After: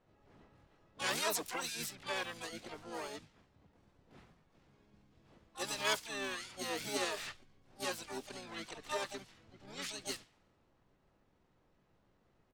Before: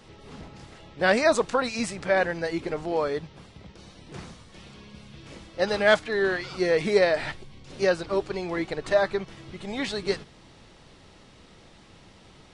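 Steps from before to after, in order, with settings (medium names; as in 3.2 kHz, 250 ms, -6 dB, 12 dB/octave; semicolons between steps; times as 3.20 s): level-controlled noise filter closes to 740 Hz, open at -21 dBFS; harmony voices -7 st -2 dB, +7 st -5 dB, +12 st -9 dB; pre-emphasis filter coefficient 0.9; trim -3.5 dB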